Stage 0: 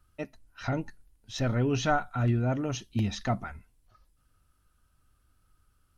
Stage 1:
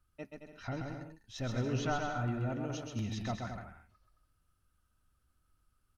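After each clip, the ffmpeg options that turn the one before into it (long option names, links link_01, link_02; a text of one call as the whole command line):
ffmpeg -i in.wav -af "aecho=1:1:130|221|284.7|329.3|360.5:0.631|0.398|0.251|0.158|0.1,volume=-9dB" out.wav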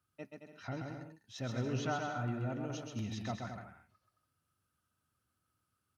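ffmpeg -i in.wav -af "highpass=frequency=94:width=0.5412,highpass=frequency=94:width=1.3066,volume=-2dB" out.wav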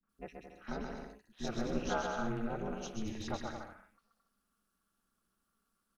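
ffmpeg -i in.wav -filter_complex "[0:a]acrossover=split=230|2300[link_01][link_02][link_03];[link_02]adelay=30[link_04];[link_03]adelay=90[link_05];[link_01][link_04][link_05]amix=inputs=3:normalize=0,aeval=exprs='val(0)*sin(2*PI*110*n/s)':channel_layout=same,volume=5dB" out.wav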